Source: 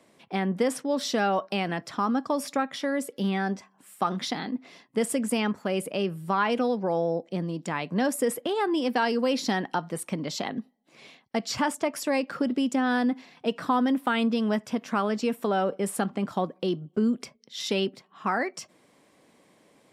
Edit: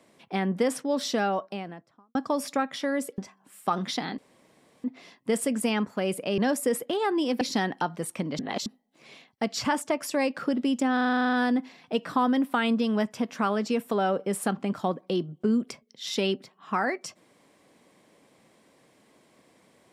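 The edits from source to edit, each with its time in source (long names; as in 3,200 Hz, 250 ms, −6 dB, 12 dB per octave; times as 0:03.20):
0:01.00–0:02.15: fade out and dull
0:03.18–0:03.52: remove
0:04.52: splice in room tone 0.66 s
0:06.06–0:07.94: remove
0:08.97–0:09.34: remove
0:10.32–0:10.59: reverse
0:12.86: stutter 0.04 s, 11 plays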